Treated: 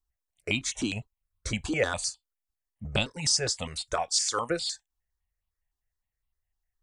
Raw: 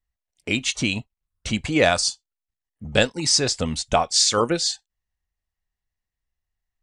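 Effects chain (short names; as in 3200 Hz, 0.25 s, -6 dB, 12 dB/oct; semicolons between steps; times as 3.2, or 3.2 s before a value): 3.49–4.5 low shelf 450 Hz -9.5 dB; compressor 2:1, threshold -23 dBFS, peak gain reduction 6 dB; step phaser 9.8 Hz 560–1700 Hz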